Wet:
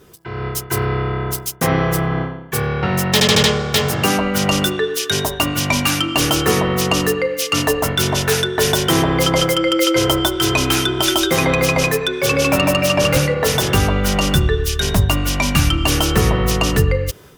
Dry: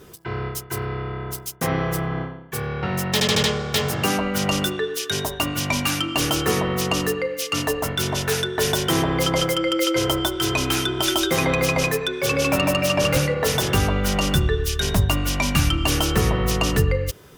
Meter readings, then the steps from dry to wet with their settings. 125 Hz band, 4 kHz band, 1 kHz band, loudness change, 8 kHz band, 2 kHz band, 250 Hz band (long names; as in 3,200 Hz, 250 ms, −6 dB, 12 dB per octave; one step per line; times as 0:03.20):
+5.0 dB, +5.0 dB, +5.0 dB, +5.0 dB, +5.0 dB, +5.0 dB, +5.0 dB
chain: automatic gain control
level −2 dB